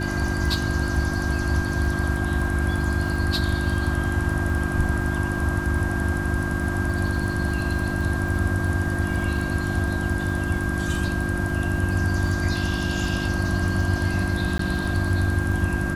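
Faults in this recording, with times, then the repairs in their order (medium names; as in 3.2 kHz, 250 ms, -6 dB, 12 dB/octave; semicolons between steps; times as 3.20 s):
crackle 36 per s -32 dBFS
hum 50 Hz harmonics 7 -28 dBFS
whine 1.6 kHz -30 dBFS
14.58–14.59 s: dropout 13 ms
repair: de-click; band-stop 1.6 kHz, Q 30; de-hum 50 Hz, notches 7; interpolate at 14.58 s, 13 ms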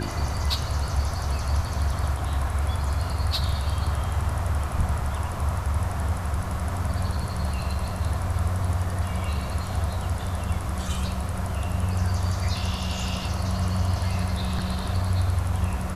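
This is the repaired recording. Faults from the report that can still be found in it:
nothing left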